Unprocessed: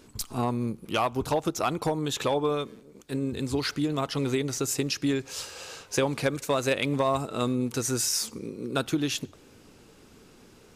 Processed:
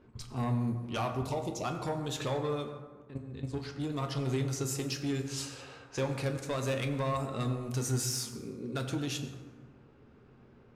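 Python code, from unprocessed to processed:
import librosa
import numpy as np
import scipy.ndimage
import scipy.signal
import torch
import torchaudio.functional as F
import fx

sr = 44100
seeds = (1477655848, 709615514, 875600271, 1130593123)

y = np.clip(10.0 ** (20.0 / 20.0) * x, -1.0, 1.0) / 10.0 ** (20.0 / 20.0)
y = fx.peak_eq(y, sr, hz=130.0, db=9.0, octaves=0.39)
y = 10.0 ** (-19.0 / 20.0) * np.tanh(y / 10.0 ** (-19.0 / 20.0))
y = fx.cheby1_bandstop(y, sr, low_hz=970.0, high_hz=2000.0, order=4, at=(1.14, 1.63), fade=0.02)
y = fx.level_steps(y, sr, step_db=13, at=(2.69, 3.78), fade=0.02)
y = fx.high_shelf(y, sr, hz=6400.0, db=11.0, at=(5.14, 5.61))
y = fx.env_lowpass(y, sr, base_hz=1700.0, full_db=-25.0)
y = fx.rev_fdn(y, sr, rt60_s=1.5, lf_ratio=1.05, hf_ratio=0.5, size_ms=76.0, drr_db=3.5)
y = y * librosa.db_to_amplitude(-7.0)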